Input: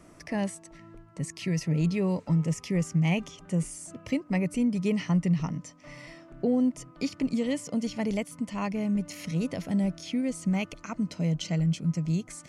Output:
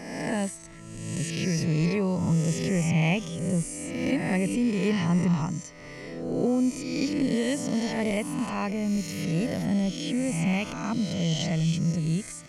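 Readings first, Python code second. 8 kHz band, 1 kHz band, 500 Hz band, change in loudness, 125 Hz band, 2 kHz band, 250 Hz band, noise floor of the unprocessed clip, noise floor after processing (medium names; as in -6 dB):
+5.5 dB, +4.5 dB, +3.5 dB, +2.0 dB, +2.0 dB, +5.5 dB, +2.0 dB, -53 dBFS, -42 dBFS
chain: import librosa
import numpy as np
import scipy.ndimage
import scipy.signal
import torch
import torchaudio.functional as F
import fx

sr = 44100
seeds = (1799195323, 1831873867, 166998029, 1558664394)

y = fx.spec_swells(x, sr, rise_s=1.29)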